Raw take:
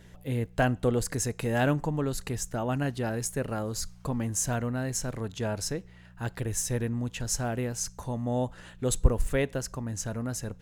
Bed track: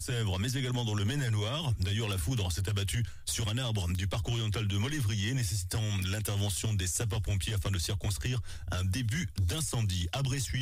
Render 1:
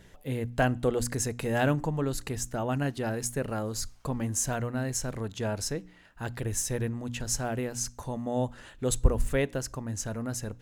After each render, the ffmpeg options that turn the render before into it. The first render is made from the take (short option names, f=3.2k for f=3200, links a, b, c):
-af "bandreject=f=60:t=h:w=4,bandreject=f=120:t=h:w=4,bandreject=f=180:t=h:w=4,bandreject=f=240:t=h:w=4,bandreject=f=300:t=h:w=4"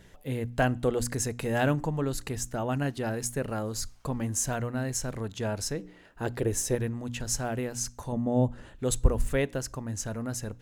-filter_complex "[0:a]asettb=1/sr,asplit=3[a][b][c];[a]atrim=end=5.794[d];[b]atrim=start=5.79:end=6.75,asetpts=PTS-STARTPTS,afade=t=in:d=0.004:c=qsin,afade=t=out:st=0.956:d=0.004:c=qsin,equalizer=f=410:t=o:w=1.3:g=10[e];[c]atrim=start=6.746[f];[d][e]acrossfade=d=0.004:c1=hsin:c2=qsin[g];[g][f]acrossfade=d=0.004:c1=qsin:c2=hsin,asettb=1/sr,asplit=3[h][i][j];[h]atrim=end=8.124[k];[i]atrim=start=8.12:end=8.76,asetpts=PTS-STARTPTS,afade=t=in:d=0.004:c=qsin,afade=t=out:st=0.636:d=0.004:c=qsin,tiltshelf=f=760:g=7[l];[j]atrim=start=8.756[m];[k][l]acrossfade=d=0.004:c1=hsin:c2=qsin[n];[n][m]acrossfade=d=0.004:c1=qsin:c2=hsin"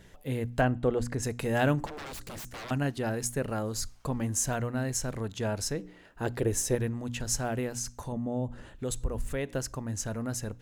-filter_complex "[0:a]asplit=3[a][b][c];[a]afade=t=out:st=0.6:d=0.02[d];[b]lowpass=f=2k:p=1,afade=t=in:st=0.6:d=0.02,afade=t=out:st=1.22:d=0.02[e];[c]afade=t=in:st=1.22:d=0.02[f];[d][e][f]amix=inputs=3:normalize=0,asettb=1/sr,asplit=3[g][h][i];[g]atrim=end=1.864[j];[h]atrim=start=1.86:end=2.71,asetpts=PTS-STARTPTS,afade=t=in:d=0.004:c=qsin,afade=t=out:st=0.846:d=0.004:c=qsin,aeval=exprs='0.0158*(abs(mod(val(0)/0.0158+3,4)-2)-1)':c=same[k];[i]atrim=start=2.706[l];[j][k]acrossfade=d=0.004:c1=hsin:c2=qsin[m];[m][l]acrossfade=d=0.004:c1=qsin:c2=hsin,asettb=1/sr,asplit=3[n][o][p];[n]atrim=end=7.784[q];[o]atrim=start=7.78:end=9.54,asetpts=PTS-STARTPTS,afade=t=in:d=0.004:c=qsin,afade=t=out:st=1.756:d=0.004:c=qsin,acompressor=threshold=-32dB:ratio=2:attack=3.2:release=140:knee=1:detection=peak[r];[p]atrim=start=9.536[s];[q][r]acrossfade=d=0.004:c1=hsin:c2=qsin[t];[t][s]acrossfade=d=0.004:c1=qsin:c2=hsin"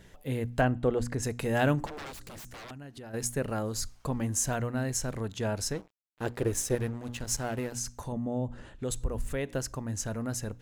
-filter_complex "[0:a]asplit=3[a][b][c];[a]afade=t=out:st=2.1:d=0.02[d];[b]acompressor=threshold=-42dB:ratio=6:attack=3.2:release=140:knee=1:detection=peak,afade=t=in:st=2.1:d=0.02,afade=t=out:st=3.13:d=0.02[e];[c]afade=t=in:st=3.13:d=0.02[f];[d][e][f]amix=inputs=3:normalize=0,asettb=1/sr,asplit=3[g][h][i];[g]atrim=end=5.734[j];[h]atrim=start=5.73:end=7.72,asetpts=PTS-STARTPTS,afade=t=in:d=0.004:c=qsin,afade=t=out:st=1.986:d=0.004:c=qsin,aeval=exprs='sgn(val(0))*max(abs(val(0))-0.00708,0)':c=same[k];[i]atrim=start=7.716[l];[j][k]acrossfade=d=0.004:c1=hsin:c2=qsin[m];[m][l]acrossfade=d=0.004:c1=qsin:c2=hsin,asettb=1/sr,asplit=3[n][o][p];[n]atrim=end=8.384[q];[o]atrim=start=8.38:end=8.9,asetpts=PTS-STARTPTS,afade=t=in:d=0.004:c=qsin,afade=t=out:st=0.516:d=0.004:c=qsin,lowpass=10k[r];[p]atrim=start=8.896[s];[q][r]acrossfade=d=0.004:c1=hsin:c2=qsin[t];[t][s]acrossfade=d=0.004:c1=qsin:c2=hsin"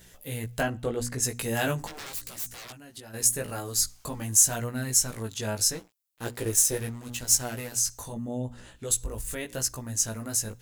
-af "flanger=delay=16:depth=2.9:speed=0.82,crystalizer=i=4.5:c=0"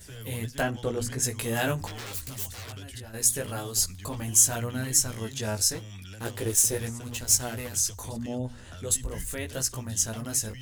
-filter_complex "[1:a]volume=-11dB[a];[0:a][a]amix=inputs=2:normalize=0"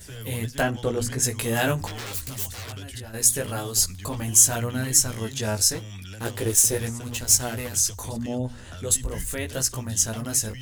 -af "volume=4dB,alimiter=limit=-3dB:level=0:latency=1"